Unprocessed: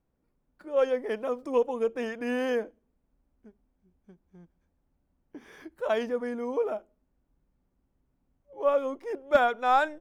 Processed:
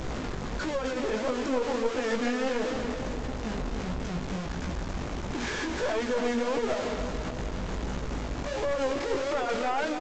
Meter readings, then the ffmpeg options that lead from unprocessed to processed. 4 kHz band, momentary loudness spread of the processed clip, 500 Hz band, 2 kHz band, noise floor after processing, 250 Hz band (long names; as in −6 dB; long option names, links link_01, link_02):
+7.5 dB, 6 LU, −1.0 dB, +1.5 dB, −35 dBFS, +6.0 dB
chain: -af "aeval=exprs='val(0)+0.5*0.0473*sgn(val(0))':channel_layout=same,alimiter=limit=-21.5dB:level=0:latency=1:release=22,flanger=delay=15.5:depth=5.7:speed=1.5,aresample=16000,aeval=exprs='clip(val(0),-1,0.0211)':channel_layout=same,aresample=44100,aecho=1:1:286|572|858|1144|1430|1716|2002:0.422|0.228|0.123|0.0664|0.0359|0.0194|0.0105,volume=3dB"